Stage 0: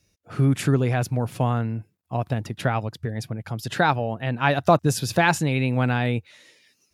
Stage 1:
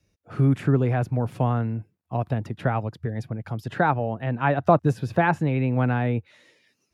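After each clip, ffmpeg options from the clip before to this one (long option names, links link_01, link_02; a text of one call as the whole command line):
ffmpeg -i in.wav -filter_complex "[0:a]highshelf=frequency=2900:gain=-10.5,acrossover=split=340|670|2500[link_01][link_02][link_03][link_04];[link_04]acompressor=threshold=-50dB:ratio=6[link_05];[link_01][link_02][link_03][link_05]amix=inputs=4:normalize=0" out.wav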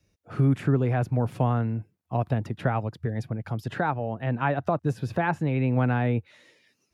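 ffmpeg -i in.wav -af "alimiter=limit=-13dB:level=0:latency=1:release=453" out.wav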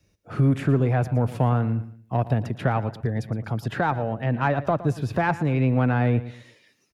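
ffmpeg -i in.wav -filter_complex "[0:a]asplit=2[link_01][link_02];[link_02]asoftclip=type=tanh:threshold=-23dB,volume=-5dB[link_03];[link_01][link_03]amix=inputs=2:normalize=0,aecho=1:1:115|230|345:0.168|0.0537|0.0172" out.wav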